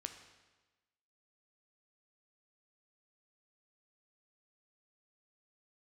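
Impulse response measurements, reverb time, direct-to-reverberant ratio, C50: 1.2 s, 6.0 dB, 8.5 dB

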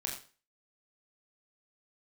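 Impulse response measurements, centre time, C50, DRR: 29 ms, 6.0 dB, -0.5 dB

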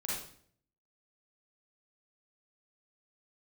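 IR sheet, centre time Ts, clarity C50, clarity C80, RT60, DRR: 62 ms, -1.5 dB, 4.5 dB, 0.60 s, -6.5 dB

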